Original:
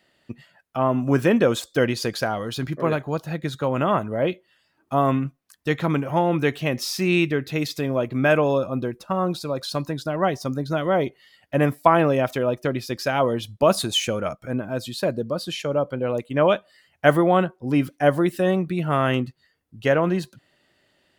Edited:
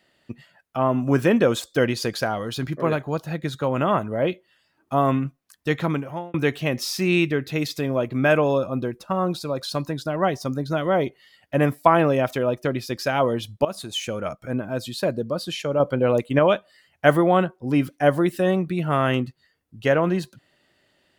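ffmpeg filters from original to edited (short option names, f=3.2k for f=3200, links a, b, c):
-filter_complex "[0:a]asplit=5[a][b][c][d][e];[a]atrim=end=6.34,asetpts=PTS-STARTPTS,afade=t=out:st=5.82:d=0.52[f];[b]atrim=start=6.34:end=13.65,asetpts=PTS-STARTPTS,afade=t=in:d=0.004:c=hsin,afade=t=out:st=7.306:d=0.004:c=hsin:silence=0.149624[g];[c]atrim=start=13.65:end=15.802,asetpts=PTS-STARTPTS,afade=t=in:d=0.79:silence=0.149624[h];[d]atrim=start=15.798:end=16.392,asetpts=PTS-STARTPTS,volume=5dB[i];[e]atrim=start=16.388[j];[f][g][h]concat=n=3:v=0:a=1[k];[k][i]acrossfade=d=0.004:c1=hsin:c2=hsin[l];[l][j]acrossfade=d=0.004:c1=hsin:c2=hsin"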